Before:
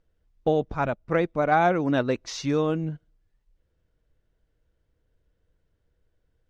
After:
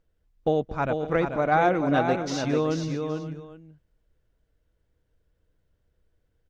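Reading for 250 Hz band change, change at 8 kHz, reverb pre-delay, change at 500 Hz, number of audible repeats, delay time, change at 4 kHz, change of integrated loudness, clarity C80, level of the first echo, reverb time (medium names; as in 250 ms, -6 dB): 0.0 dB, no reading, no reverb, 0.0 dB, 4, 224 ms, 0.0 dB, -0.5 dB, no reverb, -19.5 dB, no reverb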